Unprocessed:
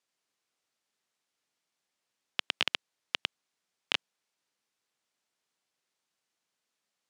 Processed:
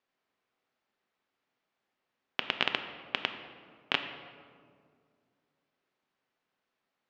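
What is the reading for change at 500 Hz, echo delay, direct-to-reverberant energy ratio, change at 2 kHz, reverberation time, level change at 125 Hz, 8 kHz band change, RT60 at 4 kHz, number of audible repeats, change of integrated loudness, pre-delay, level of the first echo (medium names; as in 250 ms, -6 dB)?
+6.0 dB, no echo, 6.5 dB, +2.0 dB, 2.1 s, +5.5 dB, under -10 dB, 1.1 s, no echo, 0.0 dB, 3 ms, no echo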